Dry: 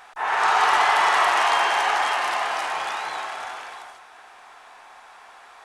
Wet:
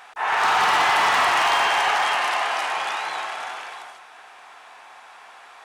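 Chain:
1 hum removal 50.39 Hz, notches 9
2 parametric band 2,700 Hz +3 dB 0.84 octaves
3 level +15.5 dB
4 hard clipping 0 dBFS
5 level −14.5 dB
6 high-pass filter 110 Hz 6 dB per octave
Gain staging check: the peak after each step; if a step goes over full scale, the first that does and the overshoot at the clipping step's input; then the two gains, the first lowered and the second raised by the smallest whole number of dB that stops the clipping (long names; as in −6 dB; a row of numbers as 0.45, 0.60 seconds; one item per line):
−7.0, −7.0, +8.5, 0.0, −14.5, −13.0 dBFS
step 3, 8.5 dB
step 3 +6.5 dB, step 5 −5.5 dB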